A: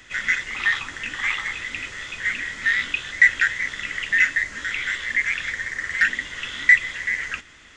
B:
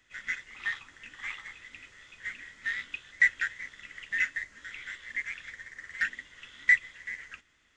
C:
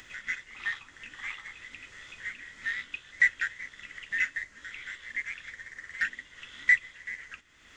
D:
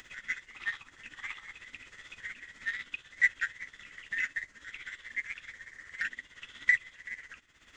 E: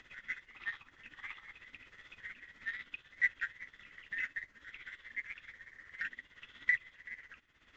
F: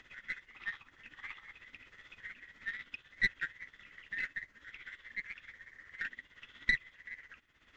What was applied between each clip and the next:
upward expander 1.5:1, over -33 dBFS; gain -7.5 dB
upward compressor, threshold -39 dBFS
tremolo 16 Hz, depth 64%
air absorption 150 m; gain -4 dB
tracing distortion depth 0.055 ms

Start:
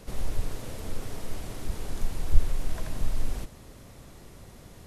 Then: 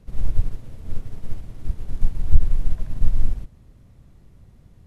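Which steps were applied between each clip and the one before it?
tone controls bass +13 dB, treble -5 dB; maximiser -1 dB; upward expander 1.5:1, over -25 dBFS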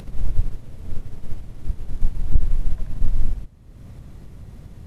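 upward compressor, threshold -27 dBFS; hard clip -5.5 dBFS, distortion -17 dB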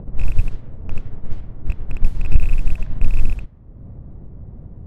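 rattling part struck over -25 dBFS, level -12 dBFS; low-pass opened by the level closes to 650 Hz, open at -9.5 dBFS; slew limiter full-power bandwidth 34 Hz; gain +3.5 dB

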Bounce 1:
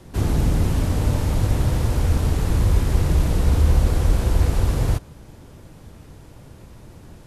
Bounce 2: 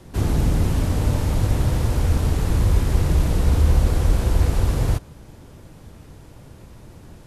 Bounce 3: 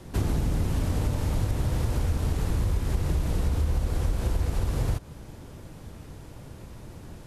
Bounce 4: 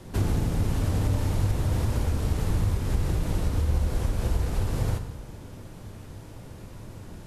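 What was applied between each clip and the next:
nothing audible
compressor, threshold -22 dBFS, peak gain reduction 11 dB
plate-style reverb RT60 1.2 s, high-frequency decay 0.8×, DRR 6.5 dB

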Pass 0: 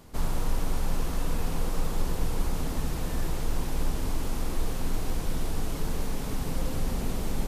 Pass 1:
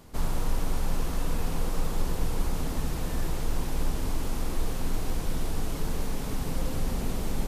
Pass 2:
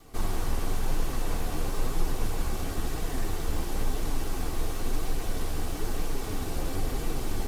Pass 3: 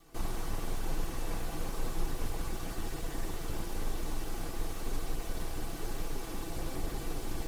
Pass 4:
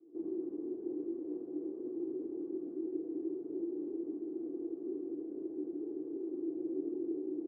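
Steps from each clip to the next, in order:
nothing audible
minimum comb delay 2.6 ms; flange 0.99 Hz, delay 5.7 ms, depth 8.3 ms, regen +42%; gain +5 dB
minimum comb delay 6 ms; gain -5 dB
Butterworth band-pass 340 Hz, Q 3.6; on a send: early reflections 27 ms -6.5 dB, 74 ms -7.5 dB; on the sum: gain +8.5 dB

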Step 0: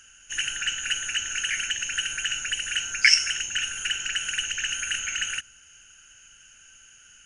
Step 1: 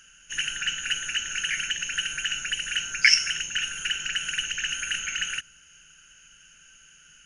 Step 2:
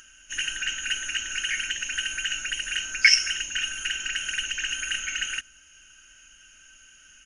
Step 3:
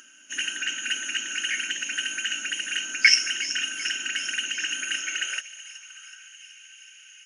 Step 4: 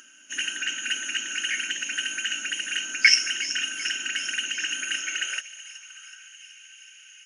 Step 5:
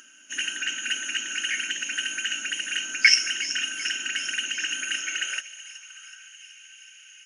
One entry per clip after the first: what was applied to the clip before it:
thirty-one-band EQ 100 Hz -11 dB, 160 Hz +10 dB, 800 Hz -6 dB, 8000 Hz -9 dB
comb 3.2 ms, depth 63%; upward compressor, threshold -48 dBFS; gain -1 dB
high-pass sweep 260 Hz -> 2200 Hz, 4.9–6.43; thin delay 0.374 s, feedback 65%, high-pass 2700 Hz, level -12.5 dB
nothing audible
reverb RT60 1.5 s, pre-delay 3 ms, DRR 21.5 dB

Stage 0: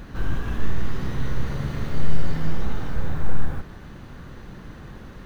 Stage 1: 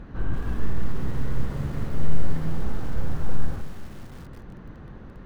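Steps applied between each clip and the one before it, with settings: LPF 1200 Hz 6 dB/oct; lo-fi delay 0.188 s, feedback 55%, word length 6-bit, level -13.5 dB; gain -1.5 dB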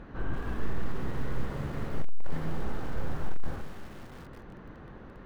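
tone controls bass -7 dB, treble -5 dB; hard clip -18 dBFS, distortion -17 dB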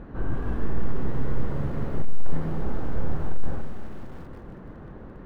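tilt shelf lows +5.5 dB, about 1400 Hz; split-band echo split 400 Hz, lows 0.129 s, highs 0.33 s, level -13 dB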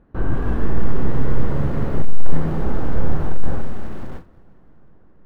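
gate with hold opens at -28 dBFS; on a send at -22.5 dB: reverb RT60 4.7 s, pre-delay 98 ms; on the sum: gain +7 dB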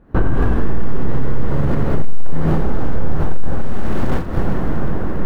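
recorder AGC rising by 76 dB/s; limiter -7 dBFS, peak gain reduction 5 dB; gain +2.5 dB

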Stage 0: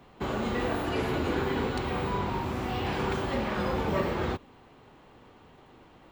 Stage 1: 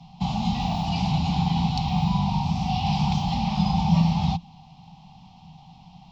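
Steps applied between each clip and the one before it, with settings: EQ curve 120 Hz 0 dB, 170 Hz +14 dB, 350 Hz -28 dB, 530 Hz -28 dB, 780 Hz +6 dB, 1600 Hz -29 dB, 2500 Hz -3 dB, 5400 Hz +8 dB, 9700 Hz -21 dB; gain +6 dB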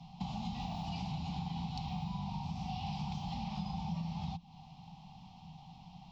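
compressor 4:1, threshold -33 dBFS, peak gain reduction 15.5 dB; gain -5 dB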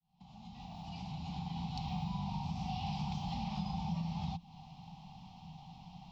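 opening faded in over 1.97 s; gain +1 dB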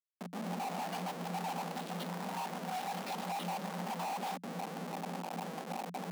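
random spectral dropouts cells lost 23%; Schmitt trigger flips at -54.5 dBFS; rippled Chebyshev high-pass 170 Hz, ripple 6 dB; gain +7.5 dB

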